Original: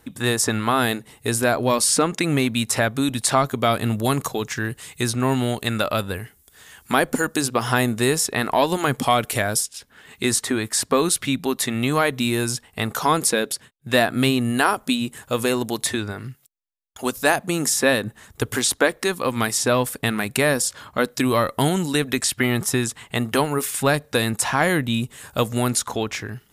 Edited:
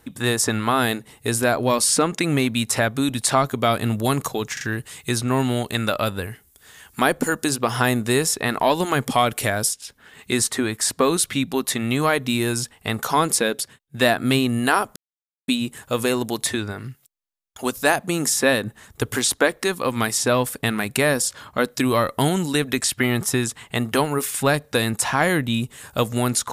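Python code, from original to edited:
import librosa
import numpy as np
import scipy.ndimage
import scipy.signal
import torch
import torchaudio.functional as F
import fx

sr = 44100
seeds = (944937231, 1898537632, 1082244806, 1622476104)

y = fx.edit(x, sr, fx.stutter(start_s=4.53, slice_s=0.04, count=3),
    fx.insert_silence(at_s=14.88, length_s=0.52), tone=tone)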